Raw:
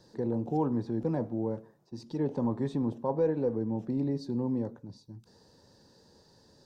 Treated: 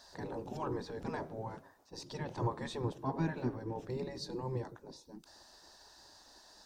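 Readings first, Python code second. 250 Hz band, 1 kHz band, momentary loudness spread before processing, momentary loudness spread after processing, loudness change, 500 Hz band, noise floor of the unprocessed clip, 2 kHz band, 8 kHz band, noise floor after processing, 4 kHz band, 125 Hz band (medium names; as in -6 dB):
-11.0 dB, -1.5 dB, 18 LU, 20 LU, -8.0 dB, -8.5 dB, -63 dBFS, +6.0 dB, no reading, -62 dBFS, +6.0 dB, -5.0 dB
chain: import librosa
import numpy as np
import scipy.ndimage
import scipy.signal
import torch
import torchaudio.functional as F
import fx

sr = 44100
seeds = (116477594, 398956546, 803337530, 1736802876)

y = fx.spec_gate(x, sr, threshold_db=-10, keep='weak')
y = fx.dynamic_eq(y, sr, hz=630.0, q=0.95, threshold_db=-56.0, ratio=4.0, max_db=-8)
y = y * 10.0 ** (7.5 / 20.0)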